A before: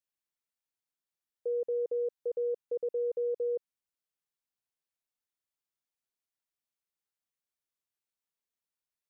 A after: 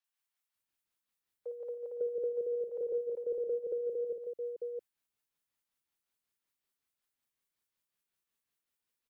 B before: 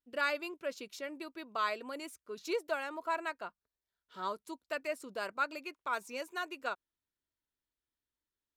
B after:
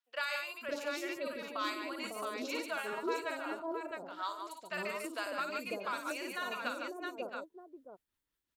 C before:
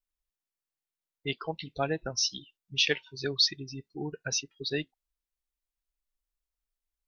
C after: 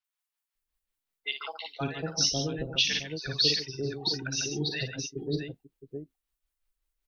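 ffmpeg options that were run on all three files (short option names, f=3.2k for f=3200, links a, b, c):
-filter_complex "[0:a]asplit=2[a][b];[b]aecho=0:1:55|144|666:0.531|0.355|0.376[c];[a][c]amix=inputs=2:normalize=0,tremolo=f=5.4:d=0.46,acrossover=split=650|5900[d][e][f];[f]adelay=40[g];[d]adelay=550[h];[h][e][g]amix=inputs=3:normalize=0,acrossover=split=340|3000[i][j][k];[j]acompressor=threshold=-41dB:ratio=6[l];[i][l][k]amix=inputs=3:normalize=0,volume=5.5dB"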